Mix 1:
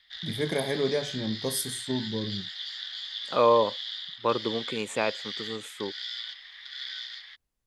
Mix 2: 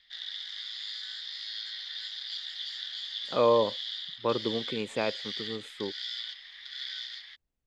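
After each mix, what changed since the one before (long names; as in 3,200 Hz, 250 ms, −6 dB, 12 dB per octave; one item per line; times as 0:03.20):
first voice: muted
second voice: add low-pass filter 2,400 Hz 6 dB per octave
master: add parametric band 1,100 Hz −4.5 dB 1.5 octaves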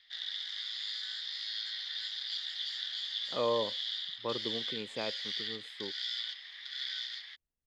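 speech −8.0 dB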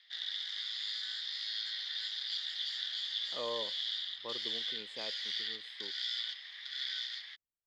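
speech −7.5 dB
master: add low-shelf EQ 170 Hz −10.5 dB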